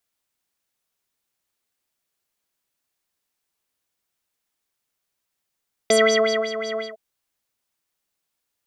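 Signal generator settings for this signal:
subtractive patch with filter wobble A4, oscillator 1 triangle, oscillator 2 square, interval +7 semitones, oscillator 2 level −5.5 dB, sub −13 dB, noise −27 dB, filter lowpass, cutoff 1,500 Hz, Q 6.4, filter envelope 1.5 octaves, attack 3.7 ms, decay 0.59 s, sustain −13 dB, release 0.17 s, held 0.89 s, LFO 5.5 Hz, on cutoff 1.3 octaves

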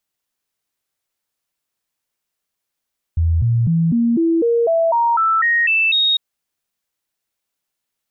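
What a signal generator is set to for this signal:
stepped sweep 82.7 Hz up, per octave 2, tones 12, 0.25 s, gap 0.00 s −12.5 dBFS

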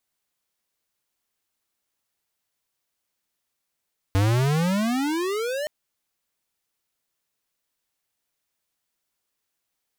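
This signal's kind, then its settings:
pitch glide with a swell square, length 1.52 s, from 94.4 Hz, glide +32.5 semitones, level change −9 dB, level −19 dB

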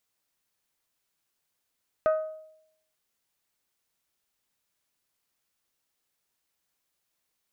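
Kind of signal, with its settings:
struck glass bell, lowest mode 628 Hz, decay 0.77 s, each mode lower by 9 dB, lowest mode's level −18 dB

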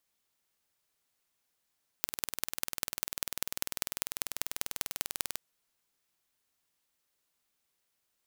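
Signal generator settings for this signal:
impulse train 20.2 per second, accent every 4, −1.5 dBFS 3.32 s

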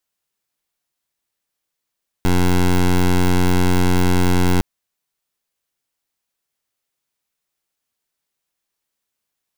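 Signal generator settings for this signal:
pulse wave 90.2 Hz, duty 15% −14 dBFS 2.36 s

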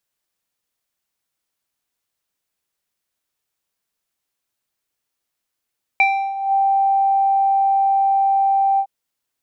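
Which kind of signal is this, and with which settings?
subtractive voice square G5 12 dB per octave, low-pass 820 Hz, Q 6.6, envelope 1.5 octaves, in 0.52 s, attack 1 ms, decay 0.34 s, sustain −13 dB, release 0.07 s, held 2.79 s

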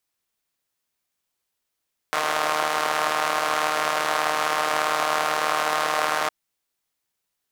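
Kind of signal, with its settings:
pulse-train model of a four-cylinder engine, steady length 4.16 s, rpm 4,600, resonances 720/1,100 Hz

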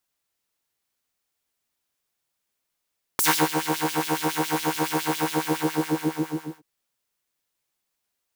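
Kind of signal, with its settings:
subtractive patch with filter wobble D#3, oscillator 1 triangle, oscillator 2 triangle, interval +12 semitones, oscillator 2 level −6.5 dB, sub −18 dB, noise −26 dB, filter highpass, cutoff 570 Hz, Q 1.5, filter envelope 3 octaves, filter decay 0.21 s, filter sustain 45%, attack 2.4 ms, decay 0.29 s, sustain −12.5 dB, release 1.43 s, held 2.00 s, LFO 7.2 Hz, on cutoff 1.3 octaves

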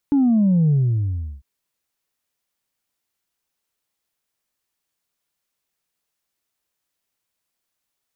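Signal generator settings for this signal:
bass drop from 290 Hz, over 1.30 s, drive 0.5 dB, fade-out 0.72 s, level −13.5 dB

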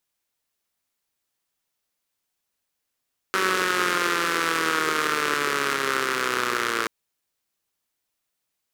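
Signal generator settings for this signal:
pulse-train model of a four-cylinder engine, changing speed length 3.53 s, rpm 5,700, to 3,400, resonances 410/1,300 Hz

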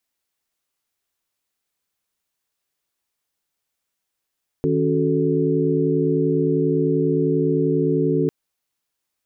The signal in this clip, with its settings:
held notes D#3/C#4/F#4/A4 sine, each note −22 dBFS 3.65 s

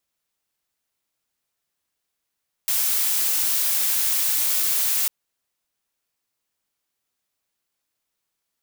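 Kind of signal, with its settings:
noise blue, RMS −21.5 dBFS 2.40 s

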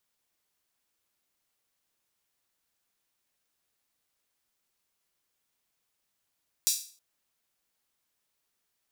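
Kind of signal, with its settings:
open synth hi-hat length 0.32 s, high-pass 5,100 Hz, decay 0.42 s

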